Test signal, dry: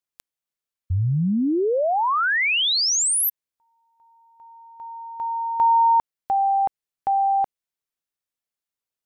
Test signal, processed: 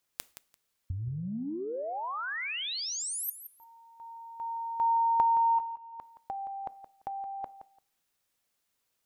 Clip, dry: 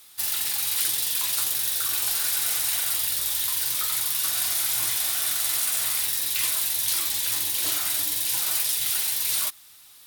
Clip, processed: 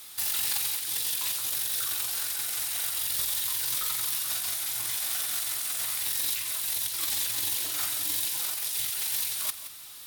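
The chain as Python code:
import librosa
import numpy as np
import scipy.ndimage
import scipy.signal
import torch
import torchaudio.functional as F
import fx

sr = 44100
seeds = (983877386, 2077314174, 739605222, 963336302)

y = fx.over_compress(x, sr, threshold_db=-29.0, ratio=-0.5)
y = fx.echo_feedback(y, sr, ms=171, feedback_pct=17, wet_db=-12)
y = fx.rev_double_slope(y, sr, seeds[0], early_s=0.43, late_s=1.7, knee_db=-26, drr_db=18.0)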